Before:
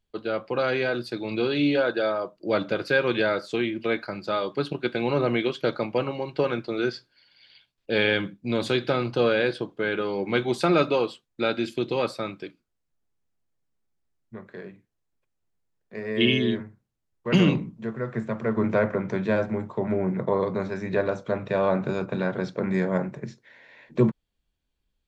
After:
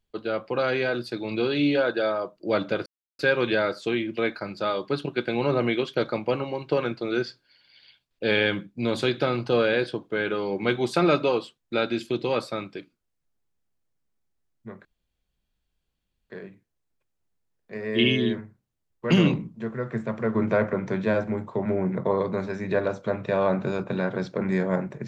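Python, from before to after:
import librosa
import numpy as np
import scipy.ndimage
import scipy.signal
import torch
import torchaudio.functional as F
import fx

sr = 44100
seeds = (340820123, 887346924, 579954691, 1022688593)

y = fx.edit(x, sr, fx.insert_silence(at_s=2.86, length_s=0.33),
    fx.insert_room_tone(at_s=14.52, length_s=1.45), tone=tone)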